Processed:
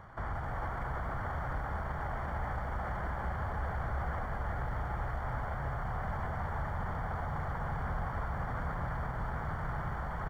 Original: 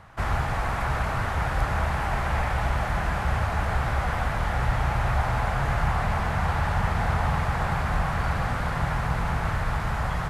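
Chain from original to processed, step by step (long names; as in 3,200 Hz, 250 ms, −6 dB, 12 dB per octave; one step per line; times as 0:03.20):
log-companded quantiser 4 bits
Savitzky-Golay smoothing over 41 samples
echo with shifted repeats 232 ms, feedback 35%, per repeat −87 Hz, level −10.5 dB
brickwall limiter −27.5 dBFS, peak gain reduction 16.5 dB
single-tap delay 816 ms −10 dB
feedback echo at a low word length 336 ms, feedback 35%, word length 10 bits, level −10 dB
level −2 dB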